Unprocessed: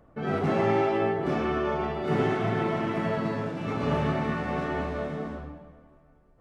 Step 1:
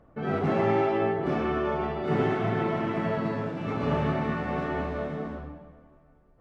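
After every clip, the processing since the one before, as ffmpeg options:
-af "highshelf=f=6100:g=-11"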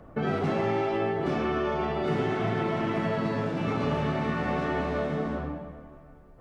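-filter_complex "[0:a]acrossover=split=82|3100[s0][s1][s2];[s0]acompressor=threshold=0.00158:ratio=4[s3];[s1]acompressor=threshold=0.0178:ratio=4[s4];[s2]acompressor=threshold=0.00178:ratio=4[s5];[s3][s4][s5]amix=inputs=3:normalize=0,volume=2.66"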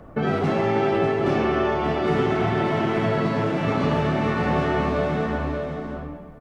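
-af "aecho=1:1:588:0.501,volume=1.78"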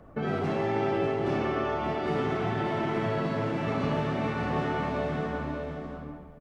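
-af "aecho=1:1:61.22|169.1:0.316|0.282,volume=0.422"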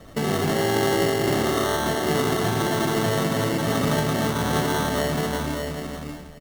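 -af "acrusher=samples=18:mix=1:aa=0.000001,volume=2"

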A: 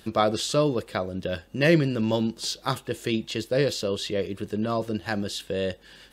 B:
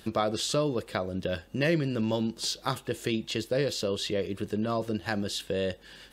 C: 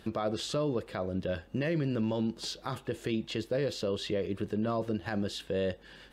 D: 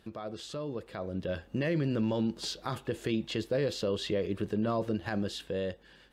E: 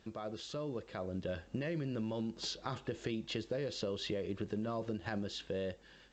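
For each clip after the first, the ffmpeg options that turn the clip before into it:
-af "acompressor=threshold=0.0447:ratio=2"
-af "highshelf=f=4000:g=-11.5,alimiter=limit=0.0794:level=0:latency=1:release=42"
-af "dynaudnorm=f=320:g=7:m=2.82,volume=0.398"
-af "acompressor=threshold=0.0282:ratio=12,volume=0.75" -ar 16000 -c:a pcm_alaw

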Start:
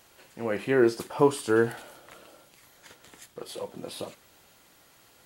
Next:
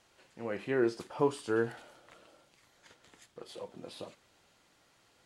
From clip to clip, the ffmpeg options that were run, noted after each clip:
-af "lowpass=7600,volume=0.422"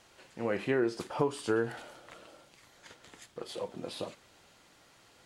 -af "acompressor=threshold=0.0282:ratio=6,volume=2"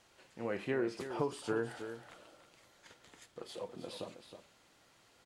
-af "aecho=1:1:318:0.316,volume=0.531"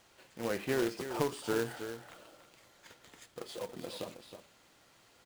-af "acrusher=bits=2:mode=log:mix=0:aa=0.000001,volume=1.26"

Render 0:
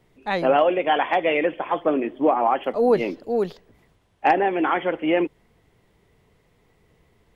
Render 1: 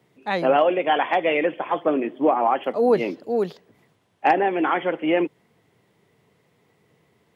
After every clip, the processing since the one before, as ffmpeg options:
-af "highpass=f=110:w=0.5412,highpass=f=110:w=1.3066"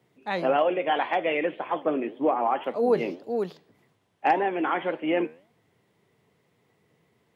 -af "flanger=delay=7.8:depth=5.2:regen=85:speed=1.8:shape=sinusoidal"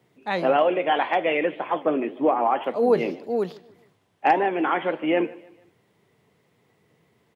-af "aecho=1:1:150|300|450:0.0794|0.0342|0.0147,volume=1.41"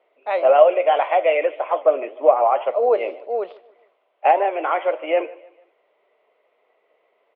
-af "highpass=f=490:w=0.5412,highpass=f=490:w=1.3066,equalizer=f=610:t=q:w=4:g=8,equalizer=f=880:t=q:w=4:g=-4,equalizer=f=1700:t=q:w=4:g=-10,lowpass=f=2700:w=0.5412,lowpass=f=2700:w=1.3066,volume=1.58"

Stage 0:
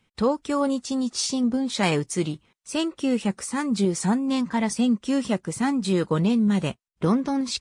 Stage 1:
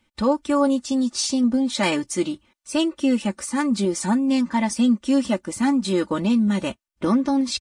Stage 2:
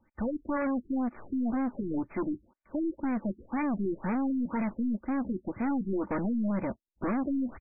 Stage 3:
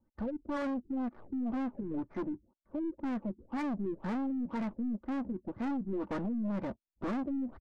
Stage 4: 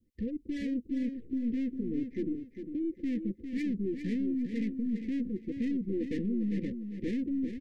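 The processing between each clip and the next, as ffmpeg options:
-af "aecho=1:1:3.4:0.76"
-af "aeval=exprs='(tanh(22.4*val(0)+0.1)-tanh(0.1))/22.4':c=same,acrusher=bits=3:mode=log:mix=0:aa=0.000001,afftfilt=real='re*lt(b*sr/1024,420*pow(2600/420,0.5+0.5*sin(2*PI*2*pts/sr)))':imag='im*lt(b*sr/1024,420*pow(2600/420,0.5+0.5*sin(2*PI*2*pts/sr)))':win_size=1024:overlap=0.75"
-af "adynamicsmooth=sensitivity=7.5:basefreq=830,volume=0.596"
-af "asuperstop=centerf=950:order=20:qfactor=0.74,aecho=1:1:402|804|1206:0.398|0.104|0.0269,volume=1.33"

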